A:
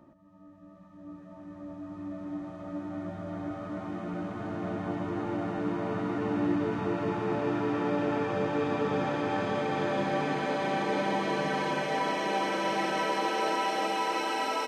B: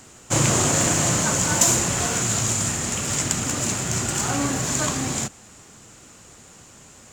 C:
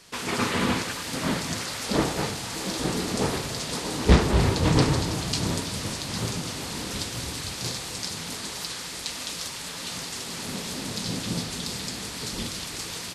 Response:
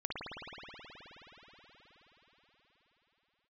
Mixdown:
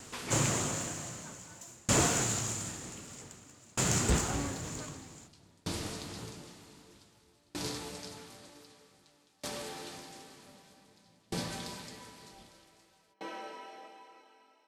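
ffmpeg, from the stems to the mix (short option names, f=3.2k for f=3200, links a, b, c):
-filter_complex "[0:a]flanger=delay=16:depth=7.2:speed=0.25,volume=-8dB[a];[1:a]volume=-2dB[b];[2:a]volume=-7dB,asplit=2[c][d];[d]volume=-14dB[e];[3:a]atrim=start_sample=2205[f];[e][f]afir=irnorm=-1:irlink=0[g];[a][b][c][g]amix=inputs=4:normalize=0,asoftclip=type=tanh:threshold=-8.5dB,aeval=exprs='val(0)*pow(10,-34*if(lt(mod(0.53*n/s,1),2*abs(0.53)/1000),1-mod(0.53*n/s,1)/(2*abs(0.53)/1000),(mod(0.53*n/s,1)-2*abs(0.53)/1000)/(1-2*abs(0.53)/1000))/20)':c=same"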